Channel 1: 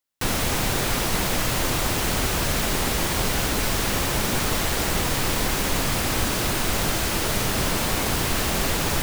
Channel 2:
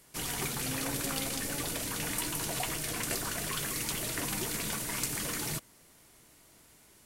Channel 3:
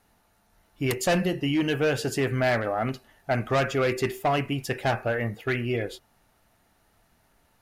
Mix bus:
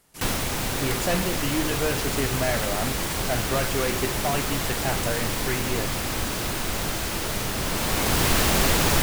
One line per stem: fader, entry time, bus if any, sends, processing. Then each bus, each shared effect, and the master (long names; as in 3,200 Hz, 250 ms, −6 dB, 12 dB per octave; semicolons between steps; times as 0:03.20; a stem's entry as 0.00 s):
+3.0 dB, 0.00 s, no send, automatic ducking −7 dB, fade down 0.45 s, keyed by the third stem
−4.0 dB, 0.00 s, no send, no processing
−3.0 dB, 0.00 s, no send, no processing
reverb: not used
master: no processing